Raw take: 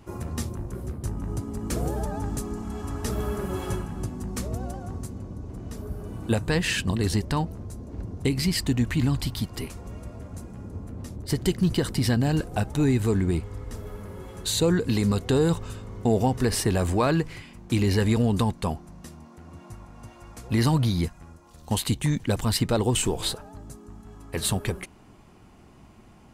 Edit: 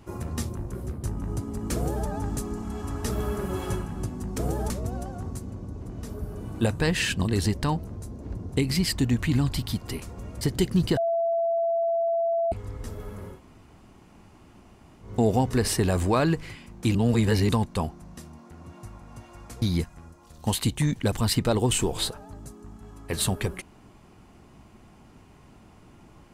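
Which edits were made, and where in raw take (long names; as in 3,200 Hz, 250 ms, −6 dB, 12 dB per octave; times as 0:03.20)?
0:01.75–0:02.07: duplicate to 0:04.38
0:10.09–0:11.28: remove
0:11.84–0:13.39: beep over 671 Hz −21.5 dBFS
0:14.22–0:15.93: fill with room tone, crossfade 0.16 s
0:17.82–0:18.36: reverse
0:20.49–0:20.86: remove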